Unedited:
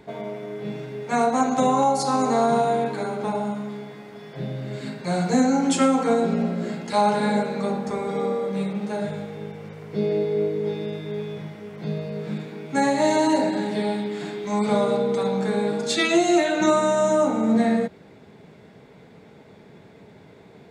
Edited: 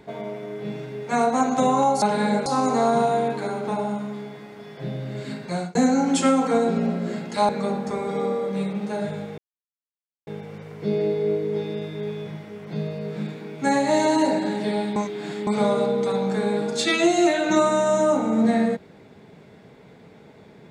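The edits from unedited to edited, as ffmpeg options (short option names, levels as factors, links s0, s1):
-filter_complex "[0:a]asplit=8[s0][s1][s2][s3][s4][s5][s6][s7];[s0]atrim=end=2.022[s8];[s1]atrim=start=7.048:end=7.492[s9];[s2]atrim=start=2.018:end=5.31,asetpts=PTS-STARTPTS,afade=t=out:st=2.942:d=0.35:c=qsin[s10];[s3]atrim=start=5.31:end=7.052,asetpts=PTS-STARTPTS,afade=t=in:d=0.004:c=hsin[s11];[s4]atrim=start=7.488:end=9.38,asetpts=PTS-STARTPTS,afade=t=out:st=1.888:d=0.004:c=hsin,apad=pad_dur=0.89[s12];[s5]atrim=start=9.38:end=14.072,asetpts=PTS-STARTPTS,afade=t=in:d=0.004:c=hsin[s13];[s6]atrim=start=14.068:end=14.582,asetpts=PTS-STARTPTS,areverse[s14];[s7]atrim=start=14.578[s15];[s8][s9]acrossfade=d=0.004:c1=hsin:c2=hsin[s16];[s10][s11]concat=n=2:v=0:a=1[s17];[s16][s17]acrossfade=d=0.004:c1=hsin:c2=hsin[s18];[s12][s13]concat=n=2:v=0:a=1[s19];[s18][s19]acrossfade=d=0.004:c1=hsin:c2=hsin[s20];[s20][s14]acrossfade=d=0.004:c1=hsin:c2=hsin[s21];[s21][s15]acrossfade=d=0.004:c1=hsin:c2=hsin"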